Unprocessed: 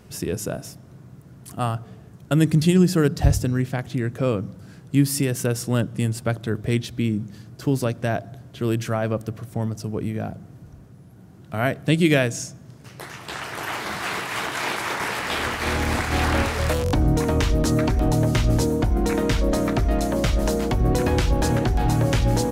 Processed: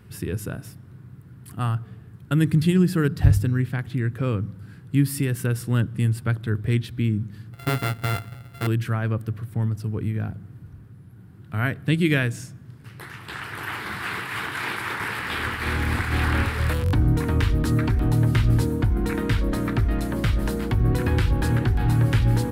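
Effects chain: 7.53–8.67 sample sorter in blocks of 64 samples; fifteen-band EQ 100 Hz +8 dB, 630 Hz -10 dB, 1600 Hz +4 dB, 6300 Hz -11 dB; gain -2.5 dB

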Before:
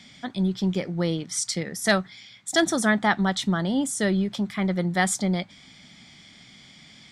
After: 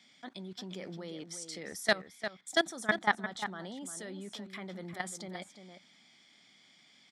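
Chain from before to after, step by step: HPF 280 Hz 12 dB/oct; level quantiser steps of 20 dB; outdoor echo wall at 60 m, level -9 dB; gain -3 dB

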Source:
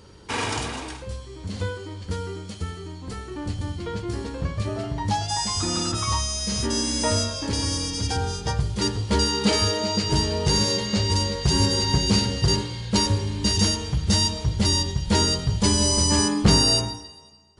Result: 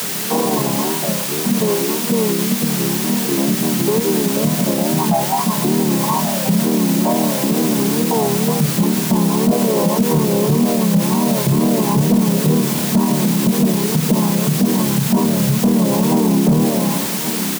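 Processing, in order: chord vocoder major triad, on D3; wow and flutter 140 cents; in parallel at +2.5 dB: compressor 6:1, threshold -35 dBFS, peak gain reduction 22.5 dB; on the sum: Chebyshev low-pass 1100 Hz, order 10; on a send: feedback echo 1.131 s, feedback 36%, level -15 dB; on the sum: requantised 6-bit, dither triangular; HPF 130 Hz; soft clip -12 dBFS, distortion -16 dB; maximiser +19.5 dB; gain -6.5 dB

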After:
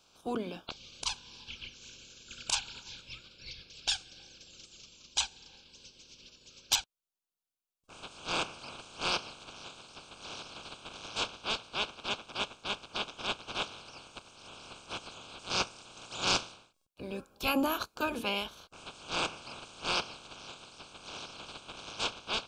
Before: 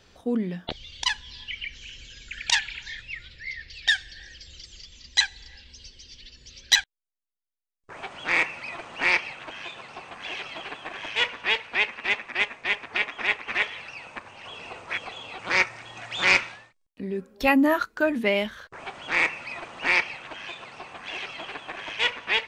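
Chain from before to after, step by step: spectral limiter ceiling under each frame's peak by 21 dB; Butterworth band-stop 1900 Hz, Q 2.3; gain -8 dB

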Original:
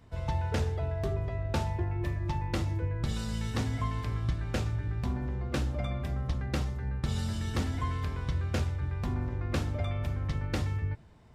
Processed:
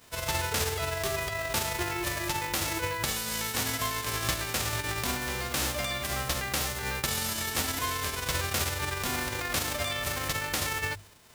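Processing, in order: spectral whitening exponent 0.3; notches 50/100 Hz

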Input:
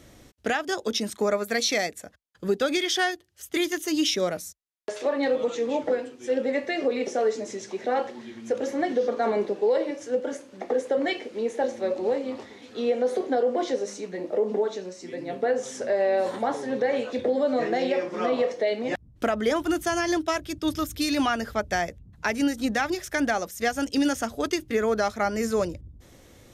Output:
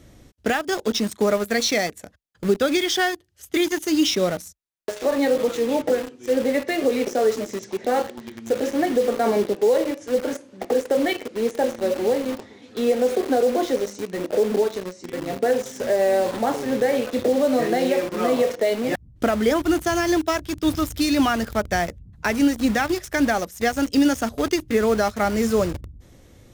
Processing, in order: low shelf 260 Hz +7.5 dB; in parallel at -3.5 dB: bit-crush 5-bit; on the sum: gain -2 dB

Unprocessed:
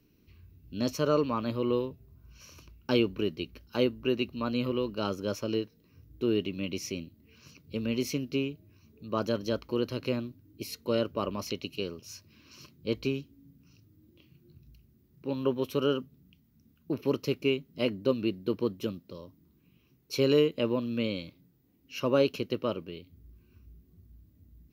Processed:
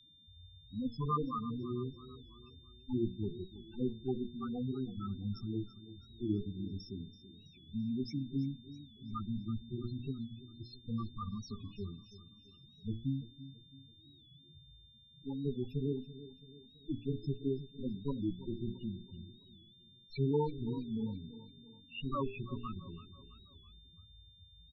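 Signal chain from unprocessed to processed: minimum comb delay 0.76 ms; loudest bins only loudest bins 4; low-pass opened by the level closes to 2300 Hz, open at -29 dBFS; whine 3600 Hz -64 dBFS; high shelf 2200 Hz +6.5 dB; notches 60/120/180/240/300/360/420/480 Hz; on a send: feedback echo 0.332 s, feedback 47%, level -15.5 dB; on the sum: record warp 45 rpm, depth 100 cents; gain -1.5 dB

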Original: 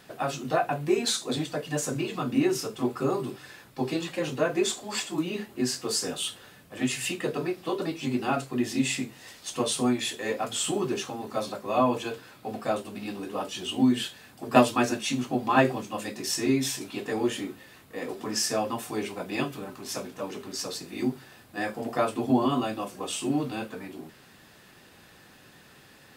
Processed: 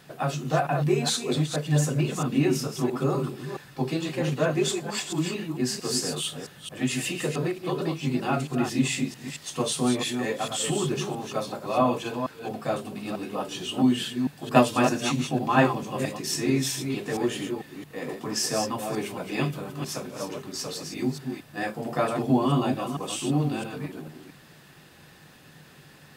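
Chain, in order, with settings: reverse delay 0.223 s, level -6 dB; bell 150 Hz +12.5 dB 0.24 oct

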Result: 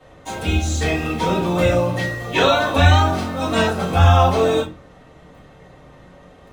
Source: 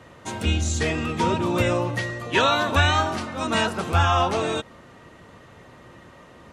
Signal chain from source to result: in parallel at -7 dB: bit-crush 6-bit; on the sum: shoebox room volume 130 m³, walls furnished, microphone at 5.2 m; gain -11 dB

